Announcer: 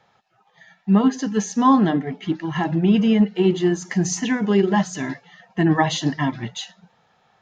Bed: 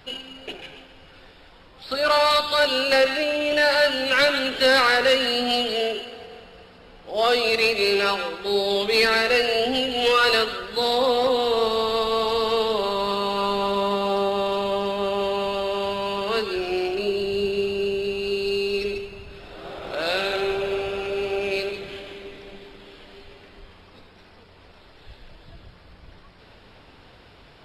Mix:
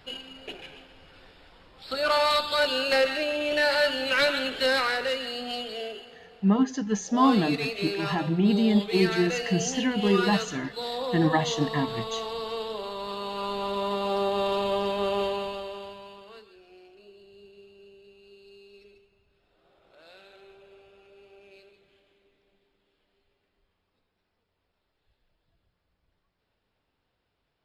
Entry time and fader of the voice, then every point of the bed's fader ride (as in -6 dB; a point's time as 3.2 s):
5.55 s, -5.5 dB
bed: 4.44 s -4.5 dB
5.22 s -11 dB
12.96 s -11 dB
14.46 s -2.5 dB
15.2 s -2.5 dB
16.56 s -28 dB